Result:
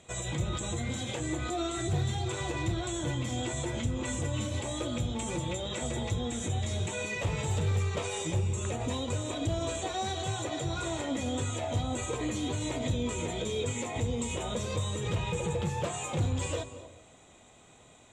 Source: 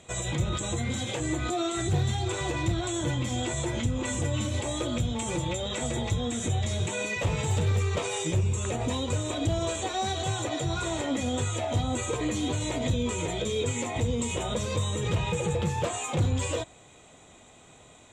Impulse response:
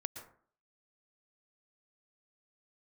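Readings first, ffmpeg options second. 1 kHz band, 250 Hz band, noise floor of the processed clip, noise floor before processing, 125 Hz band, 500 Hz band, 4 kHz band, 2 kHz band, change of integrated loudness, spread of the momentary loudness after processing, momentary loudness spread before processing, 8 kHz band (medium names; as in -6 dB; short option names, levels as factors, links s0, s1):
-3.5 dB, -3.5 dB, -57 dBFS, -54 dBFS, -3.5 dB, -3.5 dB, -3.5 dB, -3.5 dB, -3.5 dB, 3 LU, 3 LU, -3.5 dB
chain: -filter_complex "[0:a]asplit=2[s0][s1];[1:a]atrim=start_sample=2205,asetrate=25578,aresample=44100[s2];[s1][s2]afir=irnorm=-1:irlink=0,volume=0.596[s3];[s0][s3]amix=inputs=2:normalize=0,volume=0.398"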